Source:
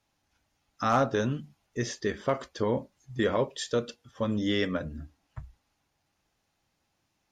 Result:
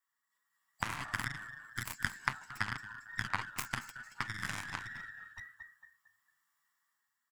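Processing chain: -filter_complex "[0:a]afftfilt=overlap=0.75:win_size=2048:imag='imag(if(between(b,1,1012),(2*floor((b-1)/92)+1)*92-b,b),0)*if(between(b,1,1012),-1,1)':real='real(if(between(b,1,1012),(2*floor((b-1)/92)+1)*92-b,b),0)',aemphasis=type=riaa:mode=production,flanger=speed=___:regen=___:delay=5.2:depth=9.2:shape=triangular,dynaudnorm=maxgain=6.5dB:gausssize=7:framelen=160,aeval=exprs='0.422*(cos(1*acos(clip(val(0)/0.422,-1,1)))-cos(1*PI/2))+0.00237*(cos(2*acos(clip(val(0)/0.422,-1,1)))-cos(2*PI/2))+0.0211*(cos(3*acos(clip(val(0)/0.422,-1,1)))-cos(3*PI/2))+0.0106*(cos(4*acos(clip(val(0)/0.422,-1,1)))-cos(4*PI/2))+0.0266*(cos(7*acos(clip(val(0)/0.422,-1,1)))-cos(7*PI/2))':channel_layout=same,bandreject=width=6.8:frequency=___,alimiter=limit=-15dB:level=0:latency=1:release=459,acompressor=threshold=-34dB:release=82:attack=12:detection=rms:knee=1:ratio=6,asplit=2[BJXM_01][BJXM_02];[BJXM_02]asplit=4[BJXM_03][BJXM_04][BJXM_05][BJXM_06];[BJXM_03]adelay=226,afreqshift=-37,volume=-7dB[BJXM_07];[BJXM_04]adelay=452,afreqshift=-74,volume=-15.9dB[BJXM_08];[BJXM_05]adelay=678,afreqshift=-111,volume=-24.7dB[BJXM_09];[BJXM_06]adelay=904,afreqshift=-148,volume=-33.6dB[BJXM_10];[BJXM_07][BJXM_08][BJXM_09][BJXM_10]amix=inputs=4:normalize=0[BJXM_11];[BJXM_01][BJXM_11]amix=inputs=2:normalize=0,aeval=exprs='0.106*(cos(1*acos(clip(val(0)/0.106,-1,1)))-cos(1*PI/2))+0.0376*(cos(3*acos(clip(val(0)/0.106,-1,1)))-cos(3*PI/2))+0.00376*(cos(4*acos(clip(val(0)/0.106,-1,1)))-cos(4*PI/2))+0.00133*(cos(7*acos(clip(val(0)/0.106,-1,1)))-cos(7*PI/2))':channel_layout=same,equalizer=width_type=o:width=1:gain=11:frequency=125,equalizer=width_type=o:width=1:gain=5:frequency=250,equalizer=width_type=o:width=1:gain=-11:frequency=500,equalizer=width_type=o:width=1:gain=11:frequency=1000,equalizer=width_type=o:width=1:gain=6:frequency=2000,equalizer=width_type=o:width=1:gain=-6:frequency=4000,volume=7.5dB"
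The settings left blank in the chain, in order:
0.67, 17, 2500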